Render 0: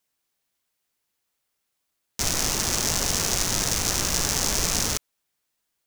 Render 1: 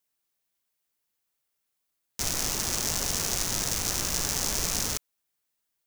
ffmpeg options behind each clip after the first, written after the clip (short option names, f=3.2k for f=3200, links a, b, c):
-af "highshelf=f=11k:g=6,volume=-5.5dB"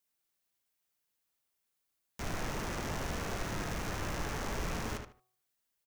-filter_complex "[0:a]bandreject=f=124.3:t=h:w=4,bandreject=f=248.6:t=h:w=4,bandreject=f=372.9:t=h:w=4,bandreject=f=497.2:t=h:w=4,bandreject=f=621.5:t=h:w=4,bandreject=f=745.8:t=h:w=4,bandreject=f=870.1:t=h:w=4,bandreject=f=994.4:t=h:w=4,bandreject=f=1.1187k:t=h:w=4,bandreject=f=1.243k:t=h:w=4,acrossover=split=2600[a][b];[b]acompressor=threshold=-43dB:ratio=4:attack=1:release=60[c];[a][c]amix=inputs=2:normalize=0,asplit=2[d][e];[e]adelay=75,lowpass=f=4.2k:p=1,volume=-5.5dB,asplit=2[f][g];[g]adelay=75,lowpass=f=4.2k:p=1,volume=0.23,asplit=2[h][i];[i]adelay=75,lowpass=f=4.2k:p=1,volume=0.23[j];[d][f][h][j]amix=inputs=4:normalize=0,volume=-2.5dB"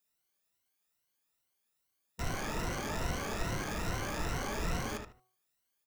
-af "afftfilt=real='re*pow(10,10/40*sin(2*PI*(2*log(max(b,1)*sr/1024/100)/log(2)-(2.4)*(pts-256)/sr)))':imag='im*pow(10,10/40*sin(2*PI*(2*log(max(b,1)*sr/1024/100)/log(2)-(2.4)*(pts-256)/sr)))':win_size=1024:overlap=0.75"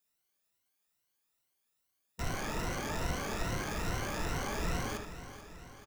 -af "aecho=1:1:436|872|1308|1744|2180|2616:0.224|0.132|0.0779|0.046|0.0271|0.016"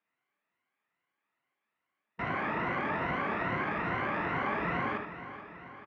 -af "highpass=170,equalizer=f=470:t=q:w=4:g=-4,equalizer=f=1.1k:t=q:w=4:g=5,equalizer=f=2k:t=q:w=4:g=5,lowpass=f=2.5k:w=0.5412,lowpass=f=2.5k:w=1.3066,volume=5dB"